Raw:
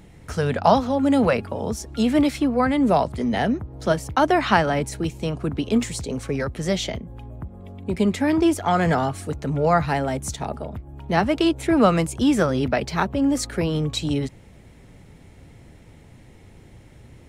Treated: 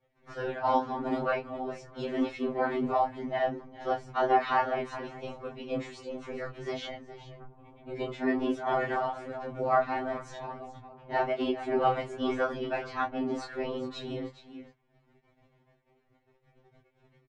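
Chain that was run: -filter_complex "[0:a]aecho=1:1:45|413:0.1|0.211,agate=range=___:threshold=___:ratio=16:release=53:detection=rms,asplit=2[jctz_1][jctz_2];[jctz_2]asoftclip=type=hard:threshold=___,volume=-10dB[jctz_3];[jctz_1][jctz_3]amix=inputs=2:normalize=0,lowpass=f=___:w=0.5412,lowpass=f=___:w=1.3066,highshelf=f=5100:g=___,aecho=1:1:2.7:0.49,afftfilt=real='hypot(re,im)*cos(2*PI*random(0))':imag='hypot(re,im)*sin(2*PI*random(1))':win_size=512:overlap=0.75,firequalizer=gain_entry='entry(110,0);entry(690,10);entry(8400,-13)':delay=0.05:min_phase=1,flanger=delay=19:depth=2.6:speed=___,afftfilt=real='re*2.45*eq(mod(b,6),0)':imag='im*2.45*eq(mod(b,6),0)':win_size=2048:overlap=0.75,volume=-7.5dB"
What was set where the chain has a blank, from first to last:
-15dB, -45dB, -11dB, 8600, 8600, 2, 1.3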